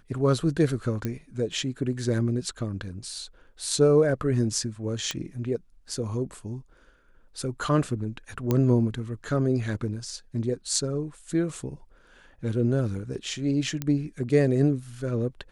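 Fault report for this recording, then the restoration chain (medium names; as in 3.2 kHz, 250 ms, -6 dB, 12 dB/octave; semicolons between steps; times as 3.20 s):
1.05 s: pop -16 dBFS
5.11 s: pop -13 dBFS
8.51 s: pop -11 dBFS
13.82 s: pop -14 dBFS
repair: de-click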